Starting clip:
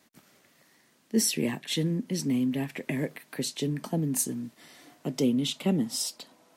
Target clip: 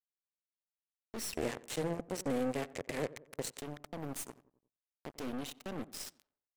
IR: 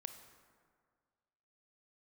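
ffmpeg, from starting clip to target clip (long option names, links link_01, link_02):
-filter_complex "[0:a]bass=frequency=250:gain=-9,treble=frequency=4000:gain=-3,aeval=exprs='0.141*(cos(1*acos(clip(val(0)/0.141,-1,1)))-cos(1*PI/2))+0.0355*(cos(5*acos(clip(val(0)/0.141,-1,1)))-cos(5*PI/2))':channel_layout=same,bandreject=frequency=3400:width=8.7,acrusher=bits=3:mix=0:aa=0.5,acompressor=threshold=-30dB:ratio=6,alimiter=level_in=2dB:limit=-24dB:level=0:latency=1:release=116,volume=-2dB,asplit=2[link_01][link_02];[link_02]adelay=90,lowpass=frequency=1400:poles=1,volume=-19dB,asplit=2[link_03][link_04];[link_04]adelay=90,lowpass=frequency=1400:poles=1,volume=0.51,asplit=2[link_05][link_06];[link_06]adelay=90,lowpass=frequency=1400:poles=1,volume=0.51,asplit=2[link_07][link_08];[link_08]adelay=90,lowpass=frequency=1400:poles=1,volume=0.51[link_09];[link_01][link_03][link_05][link_07][link_09]amix=inputs=5:normalize=0,aeval=exprs='(tanh(50.1*val(0)+0.7)-tanh(0.7))/50.1':channel_layout=same,asettb=1/sr,asplit=3[link_10][link_11][link_12];[link_10]atrim=end=1.354[link_13];[link_11]atrim=start=1.35:end=3.6,asetpts=PTS-STARTPTS,afade=type=in:duration=0.004:curve=qsin,afade=type=out:start_time=2.246:duration=0.004:curve=qsin,equalizer=frequency=125:width_type=o:width=1:gain=9,equalizer=frequency=500:width_type=o:width=1:gain=11,equalizer=frequency=2000:width_type=o:width=1:gain=4,equalizer=frequency=8000:width_type=o:width=1:gain=9[link_14];[link_12]atrim=start=3.596[link_15];[link_13][link_14]acrossfade=duration=0.004:curve1=hsin:curve2=qsin[link_16];[link_16][link_15]acrossfade=duration=0.004:curve1=qsin:curve2=hsin,volume=-1dB"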